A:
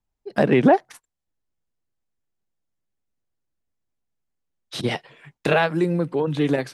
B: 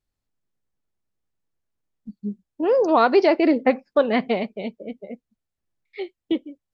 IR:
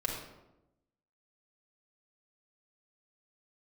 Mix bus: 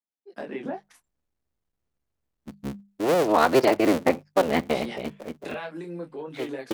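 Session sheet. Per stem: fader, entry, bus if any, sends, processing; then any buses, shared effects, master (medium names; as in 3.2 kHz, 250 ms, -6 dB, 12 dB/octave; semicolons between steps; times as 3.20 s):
-11.0 dB, 0.00 s, no send, high-pass 190 Hz 24 dB/octave; compression, threshold -18 dBFS, peak gain reduction 8 dB; detune thickener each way 15 cents
-5.0 dB, 0.40 s, no send, cycle switcher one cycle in 3, muted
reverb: none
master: hum notches 50/100/150/200 Hz; level rider gain up to 4 dB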